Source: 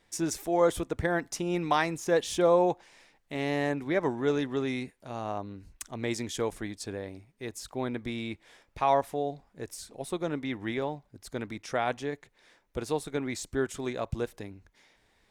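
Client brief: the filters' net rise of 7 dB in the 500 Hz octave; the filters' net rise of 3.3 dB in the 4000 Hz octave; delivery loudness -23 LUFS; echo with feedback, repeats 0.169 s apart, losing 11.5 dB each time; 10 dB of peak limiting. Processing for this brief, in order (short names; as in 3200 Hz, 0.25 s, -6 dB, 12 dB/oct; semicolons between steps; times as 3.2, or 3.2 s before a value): bell 500 Hz +8 dB; bell 4000 Hz +4 dB; limiter -16.5 dBFS; feedback echo 0.169 s, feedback 27%, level -11.5 dB; gain +6 dB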